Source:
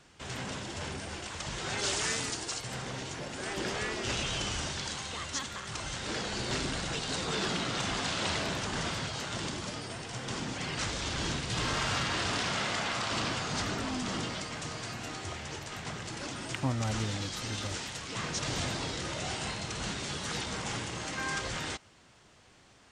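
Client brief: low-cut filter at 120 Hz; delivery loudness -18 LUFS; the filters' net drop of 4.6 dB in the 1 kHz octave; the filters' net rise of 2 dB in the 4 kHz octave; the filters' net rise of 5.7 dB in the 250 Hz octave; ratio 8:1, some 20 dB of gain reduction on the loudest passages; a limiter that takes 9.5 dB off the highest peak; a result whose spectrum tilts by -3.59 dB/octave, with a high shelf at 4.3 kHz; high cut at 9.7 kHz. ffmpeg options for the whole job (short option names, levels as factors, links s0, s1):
-af "highpass=120,lowpass=9700,equalizer=f=250:t=o:g=8,equalizer=f=1000:t=o:g=-6.5,equalizer=f=4000:t=o:g=6.5,highshelf=f=4300:g=-6.5,acompressor=threshold=0.00708:ratio=8,volume=25.1,alimiter=limit=0.355:level=0:latency=1"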